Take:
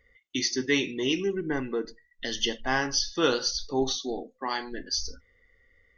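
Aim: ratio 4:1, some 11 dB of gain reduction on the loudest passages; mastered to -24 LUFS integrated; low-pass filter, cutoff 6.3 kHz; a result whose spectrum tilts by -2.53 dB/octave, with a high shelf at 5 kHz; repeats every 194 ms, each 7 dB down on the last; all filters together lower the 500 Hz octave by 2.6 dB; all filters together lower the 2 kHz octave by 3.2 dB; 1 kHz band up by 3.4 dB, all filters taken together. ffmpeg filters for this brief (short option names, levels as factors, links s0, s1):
-af "lowpass=6300,equalizer=f=500:t=o:g=-4.5,equalizer=f=1000:t=o:g=7.5,equalizer=f=2000:t=o:g=-8,highshelf=f=5000:g=8.5,acompressor=threshold=0.02:ratio=4,aecho=1:1:194|388|582|776|970:0.447|0.201|0.0905|0.0407|0.0183,volume=3.98"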